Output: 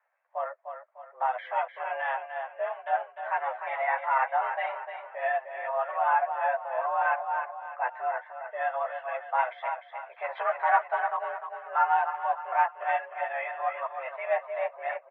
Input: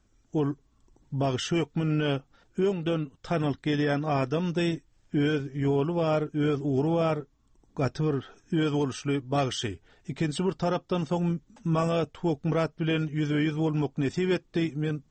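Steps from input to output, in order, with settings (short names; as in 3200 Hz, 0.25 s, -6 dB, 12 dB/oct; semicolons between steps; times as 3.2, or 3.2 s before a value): 10.24–10.87 sample leveller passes 2; transient shaper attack -2 dB, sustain -6 dB; mistuned SSB +250 Hz 460–2000 Hz; feedback echo 0.301 s, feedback 43%, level -7.5 dB; chorus voices 6, 0.56 Hz, delay 13 ms, depth 3.4 ms; gain +7 dB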